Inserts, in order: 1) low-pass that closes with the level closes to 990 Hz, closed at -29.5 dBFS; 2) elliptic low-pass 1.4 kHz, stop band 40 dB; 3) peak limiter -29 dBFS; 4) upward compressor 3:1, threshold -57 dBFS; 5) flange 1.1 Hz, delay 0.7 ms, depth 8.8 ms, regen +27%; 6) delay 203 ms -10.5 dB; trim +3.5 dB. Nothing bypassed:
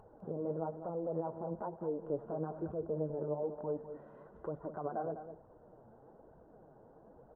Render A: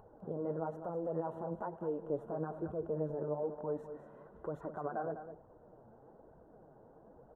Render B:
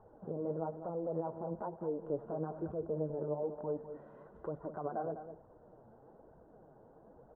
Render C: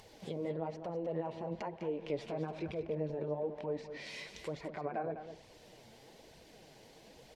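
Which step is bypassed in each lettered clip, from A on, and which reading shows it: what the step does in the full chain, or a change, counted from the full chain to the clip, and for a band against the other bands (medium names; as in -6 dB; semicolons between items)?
1, momentary loudness spread change +5 LU; 4, momentary loudness spread change -5 LU; 2, momentary loudness spread change +5 LU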